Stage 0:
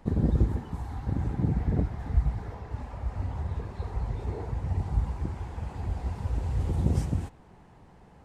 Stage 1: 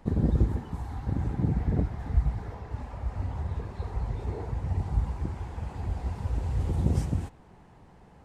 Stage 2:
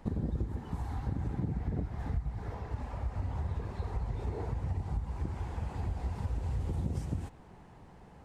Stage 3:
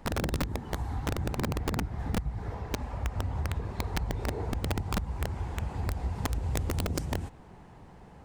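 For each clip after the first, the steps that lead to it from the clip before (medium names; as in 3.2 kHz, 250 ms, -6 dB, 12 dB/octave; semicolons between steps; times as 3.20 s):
no audible change
compression 6:1, threshold -30 dBFS, peak gain reduction 12.5 dB
integer overflow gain 25.5 dB; trim +3 dB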